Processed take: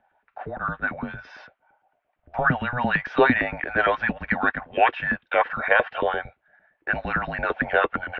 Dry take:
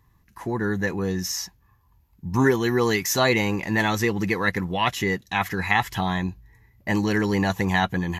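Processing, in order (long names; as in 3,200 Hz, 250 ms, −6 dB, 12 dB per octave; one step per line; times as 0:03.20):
auto-filter high-pass saw up 8.8 Hz 510–1,700 Hz
single-sideband voice off tune −250 Hz 160–3,200 Hz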